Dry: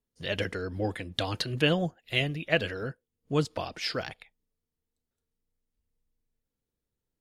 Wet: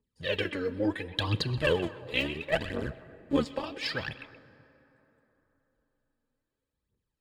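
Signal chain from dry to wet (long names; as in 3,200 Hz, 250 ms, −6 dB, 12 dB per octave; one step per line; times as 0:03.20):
0:01.57–0:03.65: sub-harmonics by changed cycles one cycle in 2, muted
low-pass filter 7,500 Hz 12 dB per octave
parametric band 5,900 Hz −14.5 dB 0.23 octaves
notch comb filter 710 Hz
phase shifter 0.72 Hz, delay 4.4 ms, feedback 71%
echo through a band-pass that steps 126 ms, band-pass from 2,800 Hz, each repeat −1.4 octaves, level −11.5 dB
dense smooth reverb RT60 3.8 s, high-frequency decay 0.45×, DRR 17 dB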